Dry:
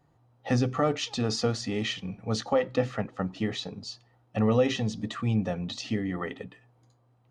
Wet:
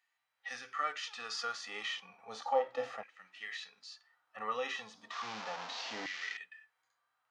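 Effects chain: 5.11–6.37 delta modulation 32 kbps, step -30.5 dBFS; harmonic-percussive split percussive -17 dB; LFO high-pass saw down 0.33 Hz 700–2200 Hz

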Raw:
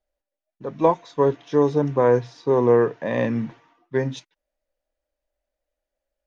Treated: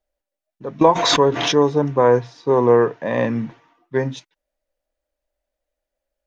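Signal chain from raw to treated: dynamic EQ 1000 Hz, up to +4 dB, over -30 dBFS, Q 0.97; 0.81–1.56 backwards sustainer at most 36 dB/s; gain +1.5 dB

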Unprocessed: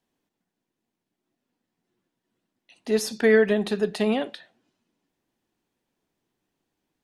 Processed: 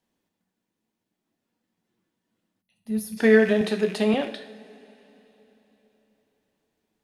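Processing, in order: rattling part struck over -40 dBFS, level -28 dBFS; two-slope reverb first 0.54 s, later 3.8 s, from -19 dB, DRR 6 dB; 2.62–3.17 spectral gain 230–9400 Hz -17 dB; 3.61–4.14 HPF 170 Hz

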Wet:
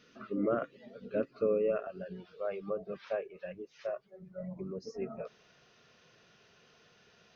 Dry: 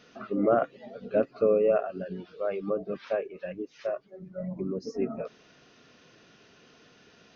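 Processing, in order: bell 760 Hz -12.5 dB 0.45 oct, from 1.87 s 280 Hz; gain -5 dB

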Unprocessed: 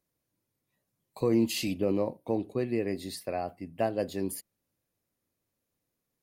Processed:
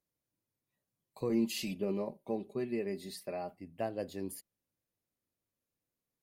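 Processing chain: 1.29–3.56 comb 5 ms, depth 68%; gain -7.5 dB

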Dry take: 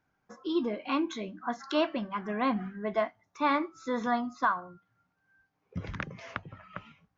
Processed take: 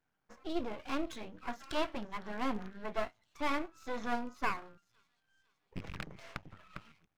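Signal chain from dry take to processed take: rattling part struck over -36 dBFS, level -33 dBFS; thin delay 0.508 s, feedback 55%, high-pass 4300 Hz, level -18 dB; half-wave rectifier; gain -2.5 dB

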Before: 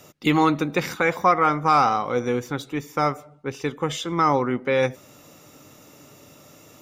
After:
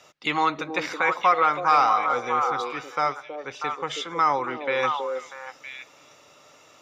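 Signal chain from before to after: three-band isolator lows -15 dB, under 580 Hz, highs -20 dB, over 6600 Hz; on a send: delay with a stepping band-pass 0.321 s, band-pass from 410 Hz, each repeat 1.4 oct, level -1.5 dB

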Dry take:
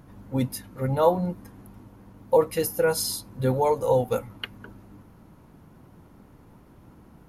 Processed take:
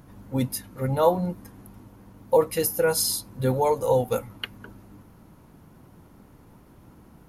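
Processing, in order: high shelf 4500 Hz +5 dB

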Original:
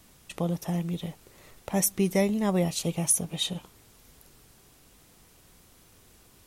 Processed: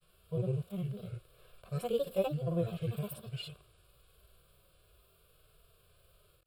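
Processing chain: grains, grains 20/s, pitch spread up and down by 7 st; fixed phaser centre 1300 Hz, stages 8; harmonic-percussive split percussive -17 dB

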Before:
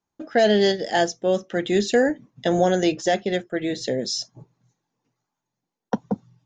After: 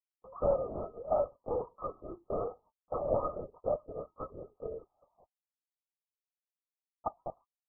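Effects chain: varispeed -16%; HPF 660 Hz 24 dB/oct; gate -54 dBFS, range -34 dB; in parallel at -1.5 dB: compressor, threshold -33 dBFS, peak gain reduction 13 dB; on the sum: brick-wall FIR low-pass 1300 Hz; LPC vocoder at 8 kHz whisper; gain -4.5 dB

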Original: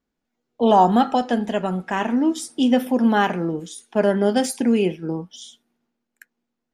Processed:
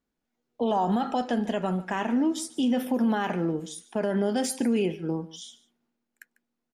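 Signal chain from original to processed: limiter -14.5 dBFS, peak gain reduction 9.5 dB; on a send: echo 0.147 s -19 dB; on the sum: gain -3 dB

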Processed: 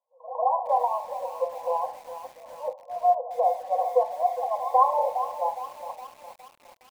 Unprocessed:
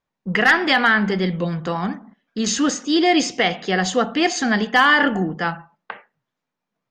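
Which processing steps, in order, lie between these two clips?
pre-echo 0.147 s -15.5 dB; FFT band-pass 480–1100 Hz; lo-fi delay 0.412 s, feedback 55%, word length 7-bit, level -11.5 dB

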